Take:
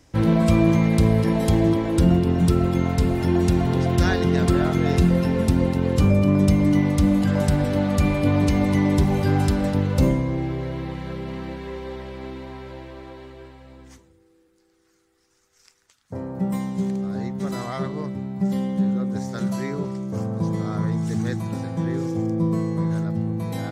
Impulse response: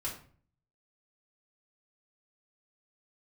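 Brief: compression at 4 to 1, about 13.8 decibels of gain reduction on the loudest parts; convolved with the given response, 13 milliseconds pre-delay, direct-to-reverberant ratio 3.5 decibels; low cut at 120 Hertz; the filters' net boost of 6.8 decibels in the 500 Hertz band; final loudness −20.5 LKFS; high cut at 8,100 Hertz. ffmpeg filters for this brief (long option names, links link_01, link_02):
-filter_complex "[0:a]highpass=120,lowpass=8100,equalizer=frequency=500:width_type=o:gain=9,acompressor=threshold=-29dB:ratio=4,asplit=2[link_01][link_02];[1:a]atrim=start_sample=2205,adelay=13[link_03];[link_02][link_03]afir=irnorm=-1:irlink=0,volume=-5dB[link_04];[link_01][link_04]amix=inputs=2:normalize=0,volume=9dB"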